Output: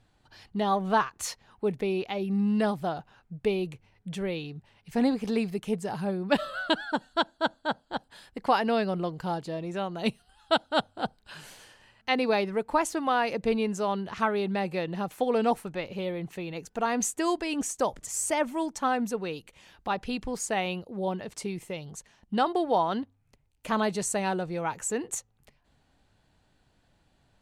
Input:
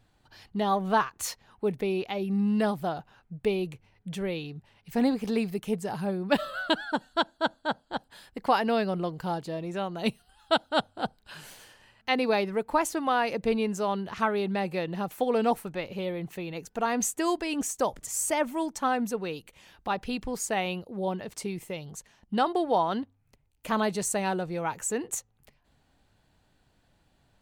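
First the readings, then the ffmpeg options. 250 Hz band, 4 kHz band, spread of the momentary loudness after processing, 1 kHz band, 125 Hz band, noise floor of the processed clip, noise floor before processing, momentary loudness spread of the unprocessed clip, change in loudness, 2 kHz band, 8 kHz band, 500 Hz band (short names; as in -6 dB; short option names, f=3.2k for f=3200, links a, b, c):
0.0 dB, 0.0 dB, 11 LU, 0.0 dB, 0.0 dB, -68 dBFS, -68 dBFS, 11 LU, 0.0 dB, 0.0 dB, -0.5 dB, 0.0 dB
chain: -af "lowpass=11k"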